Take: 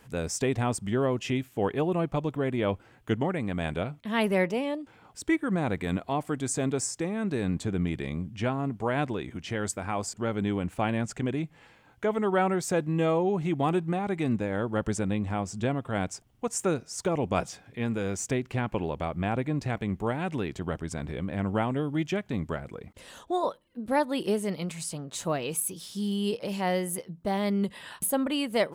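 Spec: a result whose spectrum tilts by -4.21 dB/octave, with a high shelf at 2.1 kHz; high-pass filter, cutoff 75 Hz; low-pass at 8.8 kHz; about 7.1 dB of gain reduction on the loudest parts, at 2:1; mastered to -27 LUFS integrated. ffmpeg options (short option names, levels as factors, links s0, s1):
-af "highpass=75,lowpass=8800,highshelf=f=2100:g=8,acompressor=threshold=0.0224:ratio=2,volume=2.24"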